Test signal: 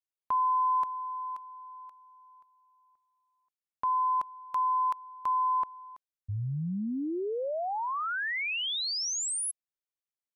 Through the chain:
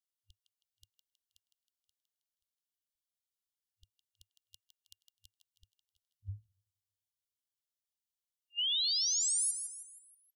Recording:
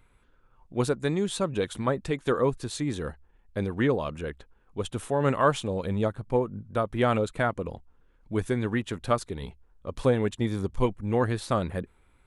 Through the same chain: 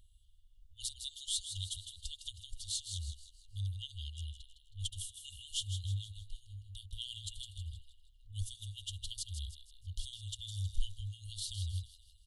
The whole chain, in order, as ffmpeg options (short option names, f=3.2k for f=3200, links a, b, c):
-filter_complex "[0:a]asplit=6[a][b][c][d][e][f];[b]adelay=159,afreqshift=110,volume=-8.5dB[g];[c]adelay=318,afreqshift=220,volume=-15.8dB[h];[d]adelay=477,afreqshift=330,volume=-23.2dB[i];[e]adelay=636,afreqshift=440,volume=-30.5dB[j];[f]adelay=795,afreqshift=550,volume=-37.8dB[k];[a][g][h][i][j][k]amix=inputs=6:normalize=0,afftfilt=real='re*(1-between(b*sr/4096,100,2800))':imag='im*(1-between(b*sr/4096,100,2800))':win_size=4096:overlap=0.75"